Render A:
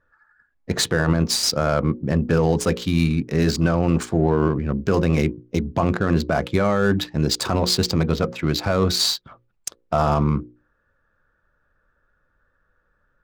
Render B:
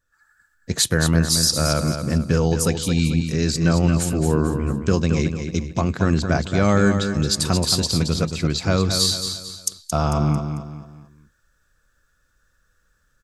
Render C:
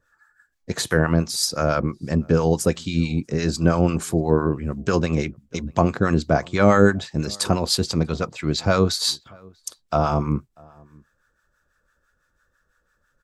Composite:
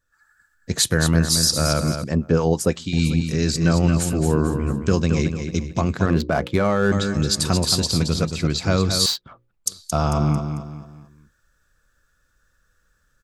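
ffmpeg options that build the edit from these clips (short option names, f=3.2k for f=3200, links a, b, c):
-filter_complex "[0:a]asplit=2[a][b];[1:a]asplit=4[c][d][e][f];[c]atrim=end=2.042[g];[2:a]atrim=start=2.038:end=2.932[h];[d]atrim=start=2.928:end=6.062[i];[a]atrim=start=6.058:end=6.922[j];[e]atrim=start=6.918:end=9.062[k];[b]atrim=start=9.058:end=9.662[l];[f]atrim=start=9.658[m];[g][h]acrossfade=d=0.004:c1=hsin:c2=hsin[n];[n][i]acrossfade=d=0.004:c1=hsin:c2=hsin[o];[o][j]acrossfade=d=0.004:c1=hsin:c2=hsin[p];[p][k]acrossfade=d=0.004:c1=hsin:c2=hsin[q];[q][l]acrossfade=d=0.004:c1=hsin:c2=hsin[r];[r][m]acrossfade=d=0.004:c1=hsin:c2=hsin"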